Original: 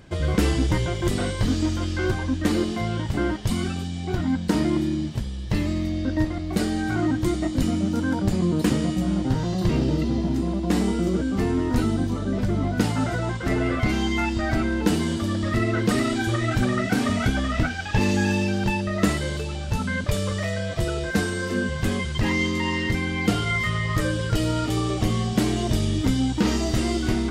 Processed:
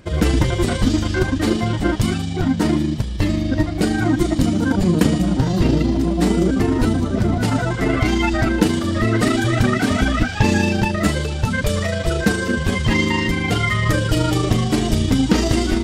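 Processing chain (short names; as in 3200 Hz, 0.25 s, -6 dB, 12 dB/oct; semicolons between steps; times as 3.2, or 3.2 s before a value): AGC gain up to 4.5 dB; granular stretch 0.58×, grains 76 ms; gain +3 dB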